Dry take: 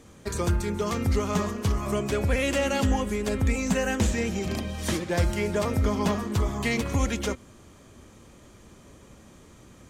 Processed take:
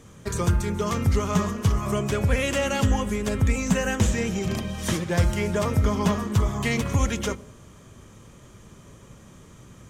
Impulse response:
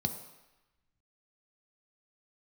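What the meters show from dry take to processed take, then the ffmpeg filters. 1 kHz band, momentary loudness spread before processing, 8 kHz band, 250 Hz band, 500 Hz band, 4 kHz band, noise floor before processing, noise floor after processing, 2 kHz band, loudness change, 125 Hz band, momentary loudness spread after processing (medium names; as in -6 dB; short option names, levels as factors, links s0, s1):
+2.0 dB, 5 LU, +2.5 dB, +1.5 dB, +0.5 dB, +1.5 dB, -52 dBFS, -49 dBFS, +1.5 dB, +2.0 dB, +4.0 dB, 5 LU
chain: -filter_complex "[0:a]asplit=2[s0][s1];[1:a]atrim=start_sample=2205[s2];[s1][s2]afir=irnorm=-1:irlink=0,volume=0.133[s3];[s0][s3]amix=inputs=2:normalize=0,volume=1.33"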